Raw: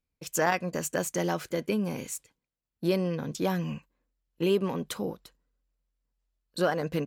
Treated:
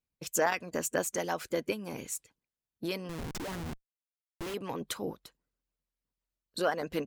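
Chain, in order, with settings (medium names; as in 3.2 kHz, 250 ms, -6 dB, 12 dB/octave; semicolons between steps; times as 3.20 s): harmonic-percussive split harmonic -13 dB; 3.09–4.54 s: Schmitt trigger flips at -39 dBFS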